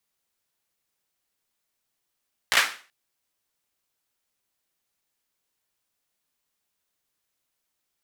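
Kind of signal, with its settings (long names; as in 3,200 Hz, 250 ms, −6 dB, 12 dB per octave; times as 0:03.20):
synth clap length 0.38 s, bursts 4, apart 16 ms, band 1,800 Hz, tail 0.38 s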